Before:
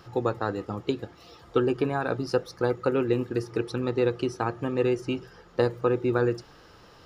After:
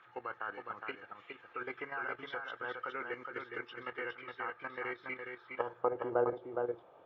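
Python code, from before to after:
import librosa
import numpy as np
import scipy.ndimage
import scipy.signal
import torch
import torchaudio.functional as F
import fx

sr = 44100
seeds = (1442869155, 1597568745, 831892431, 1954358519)

y = fx.freq_compress(x, sr, knee_hz=1500.0, ratio=1.5)
y = fx.dynamic_eq(y, sr, hz=290.0, q=0.81, threshold_db=-33.0, ratio=4.0, max_db=-3)
y = fx.filter_sweep_bandpass(y, sr, from_hz=1700.0, to_hz=650.0, start_s=5.24, end_s=6.0, q=2.4)
y = fx.level_steps(y, sr, step_db=11)
y = y + 10.0 ** (-5.0 / 20.0) * np.pad(y, (int(414 * sr / 1000.0), 0))[:len(y)]
y = y * 10.0 ** (5.0 / 20.0)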